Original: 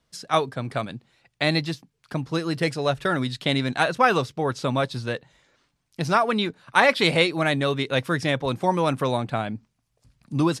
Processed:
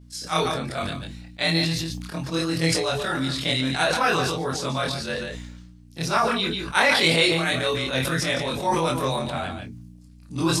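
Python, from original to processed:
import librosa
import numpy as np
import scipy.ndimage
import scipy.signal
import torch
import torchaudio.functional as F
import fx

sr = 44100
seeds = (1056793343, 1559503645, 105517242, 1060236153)

p1 = fx.frame_reverse(x, sr, frame_ms=61.0)
p2 = fx.high_shelf(p1, sr, hz=2700.0, db=10.5)
p3 = fx.doubler(p2, sr, ms=12.0, db=-11.0)
p4 = fx.add_hum(p3, sr, base_hz=60, snr_db=20)
p5 = p4 + fx.echo_single(p4, sr, ms=144, db=-11.0, dry=0)
p6 = fx.chorus_voices(p5, sr, voices=4, hz=0.4, base_ms=26, depth_ms=4.7, mix_pct=30)
p7 = fx.sustainer(p6, sr, db_per_s=35.0)
y = F.gain(torch.from_numpy(p7), 1.0).numpy()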